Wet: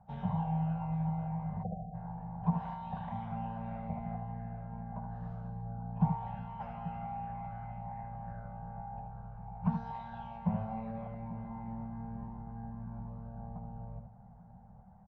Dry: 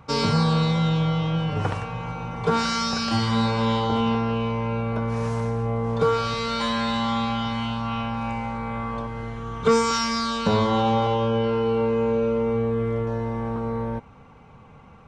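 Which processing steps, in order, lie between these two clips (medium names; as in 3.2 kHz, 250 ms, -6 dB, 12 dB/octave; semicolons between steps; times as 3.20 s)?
formant shift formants -6 st; harmonic-percussive split harmonic -12 dB; FFT filter 120 Hz 0 dB, 200 Hz +8 dB, 290 Hz -29 dB, 760 Hz +2 dB, 4.7 kHz -30 dB; multi-tap echo 76/836 ms -7.5/-15 dB; spectral selection erased 1.63–1.95 s, 780–5600 Hz; trim -5.5 dB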